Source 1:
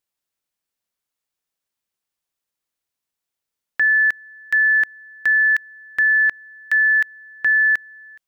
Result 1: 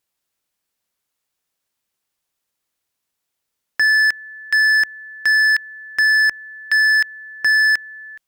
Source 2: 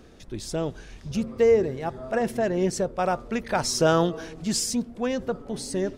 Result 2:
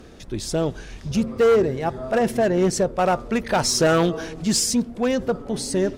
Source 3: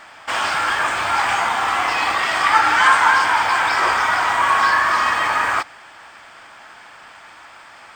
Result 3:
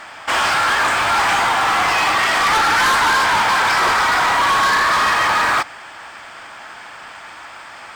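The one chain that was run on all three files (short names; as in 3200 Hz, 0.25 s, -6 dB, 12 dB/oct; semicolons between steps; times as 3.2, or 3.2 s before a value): hard clip -18.5 dBFS; added harmonics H 5 -36 dB, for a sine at -18.5 dBFS; gain +5.5 dB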